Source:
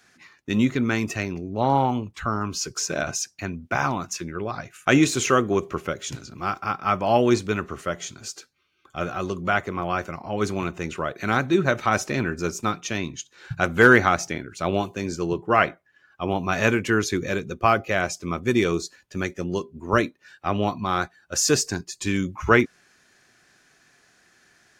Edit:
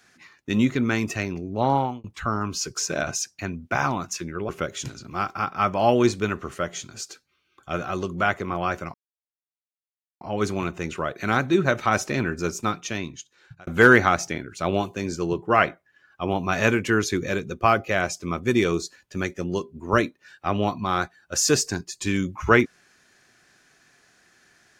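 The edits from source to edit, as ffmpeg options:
-filter_complex "[0:a]asplit=5[s0][s1][s2][s3][s4];[s0]atrim=end=2.04,asetpts=PTS-STARTPTS,afade=t=out:st=1.6:d=0.44:c=qsin[s5];[s1]atrim=start=2.04:end=4.492,asetpts=PTS-STARTPTS,afade=t=in:d=0.004:c=hsin[s6];[s2]atrim=start=5.758:end=10.21,asetpts=PTS-STARTPTS,afade=t=out:st=4.448:d=0.004:c=hsin,apad=pad_dur=1.27[s7];[s3]atrim=start=10.21:end=13.67,asetpts=PTS-STARTPTS,afade=t=in:d=0.004:c=hsin,afade=t=out:st=2.25:d=1.21:c=qsin[s8];[s4]atrim=start=13.67,asetpts=PTS-STARTPTS,afade=t=in:d=0.004:c=hsin[s9];[s5][s6]concat=n=2:v=0:a=1[s10];[s7][s8][s9]concat=n=3:v=0:a=1[s11];[s10][s11]acrossfade=d=0.004:c1=hsin:c2=hsin"

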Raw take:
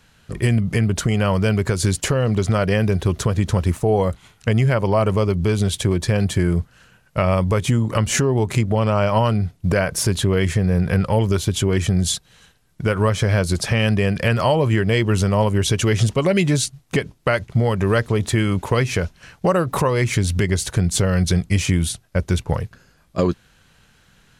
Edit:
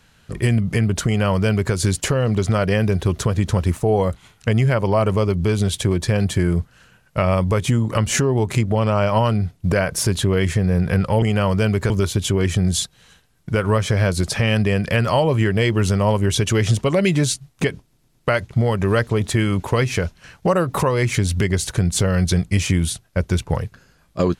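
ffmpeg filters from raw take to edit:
-filter_complex "[0:a]asplit=6[s0][s1][s2][s3][s4][s5];[s0]atrim=end=11.222[s6];[s1]atrim=start=1.058:end=1.742[s7];[s2]atrim=start=11.218:end=17.252[s8];[s3]atrim=start=17.138:end=17.252[s9];[s4]atrim=start=17.138:end=17.252[s10];[s5]atrim=start=17.138[s11];[s6][s7]acrossfade=d=0.004:c1=hsin:c2=hsin[s12];[s12][s8]acrossfade=d=0.004:c1=hsin:c2=hsin[s13];[s13][s9]acrossfade=d=0.004:c1=hsin:c2=hsin[s14];[s14][s10]acrossfade=d=0.004:c1=hsin:c2=hsin[s15];[s15][s11]acrossfade=d=0.004:c1=hsin:c2=hsin"

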